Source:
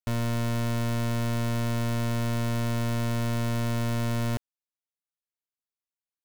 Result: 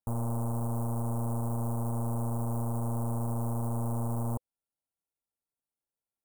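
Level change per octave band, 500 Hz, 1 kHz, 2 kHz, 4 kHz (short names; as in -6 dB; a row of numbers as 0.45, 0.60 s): -5.0 dB, -3.0 dB, under -25 dB, under -35 dB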